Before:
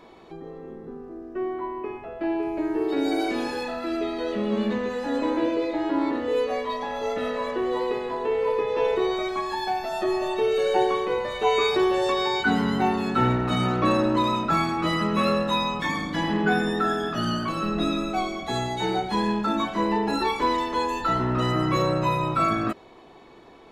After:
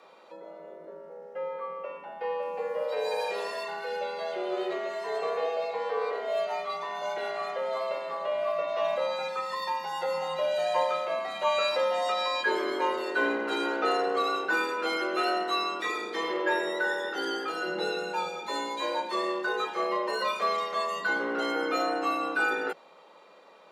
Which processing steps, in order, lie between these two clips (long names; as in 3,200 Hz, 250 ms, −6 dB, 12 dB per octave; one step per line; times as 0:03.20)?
frequency shifter +160 Hz
low-shelf EQ 270 Hz −10.5 dB
level −3.5 dB